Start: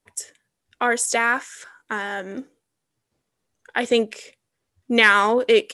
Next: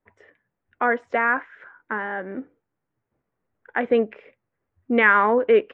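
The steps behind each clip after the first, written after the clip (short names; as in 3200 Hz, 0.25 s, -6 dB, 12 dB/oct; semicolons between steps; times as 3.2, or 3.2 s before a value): LPF 2000 Hz 24 dB/oct; notches 50/100 Hz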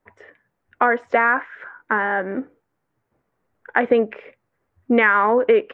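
bell 1000 Hz +3.5 dB 2.5 oct; compressor 6:1, threshold -17 dBFS, peak gain reduction 9 dB; gain +5 dB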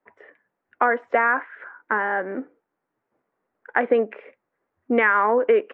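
three-band isolator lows -18 dB, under 200 Hz, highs -15 dB, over 3000 Hz; gain -2 dB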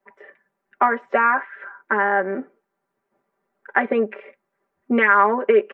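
comb 5.1 ms, depth 96%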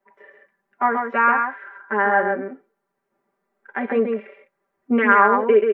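harmonic-percussive split percussive -11 dB; echo 0.133 s -5 dB; gain +1 dB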